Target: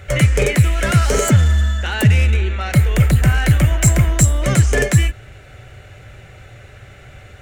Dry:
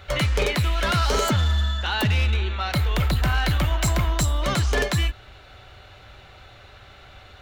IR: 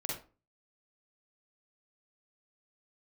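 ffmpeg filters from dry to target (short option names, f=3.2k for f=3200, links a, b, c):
-af "equalizer=f=125:t=o:w=1:g=9,equalizer=f=500:t=o:w=1:g=4,equalizer=f=1k:t=o:w=1:g=-9,equalizer=f=2k:t=o:w=1:g=6,equalizer=f=4k:t=o:w=1:g=-12,equalizer=f=8k:t=o:w=1:g=10,volume=4.5dB"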